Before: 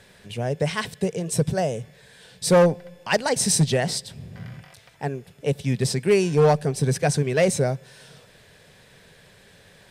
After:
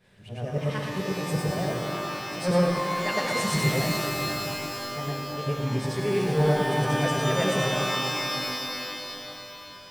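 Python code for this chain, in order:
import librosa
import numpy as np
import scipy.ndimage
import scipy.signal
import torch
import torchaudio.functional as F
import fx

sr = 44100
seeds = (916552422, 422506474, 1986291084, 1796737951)

y = fx.frame_reverse(x, sr, frame_ms=239.0)
y = fx.bass_treble(y, sr, bass_db=4, treble_db=-6)
y = fx.rev_shimmer(y, sr, seeds[0], rt60_s=3.3, semitones=12, shimmer_db=-2, drr_db=2.0)
y = y * 10.0 ** (-5.5 / 20.0)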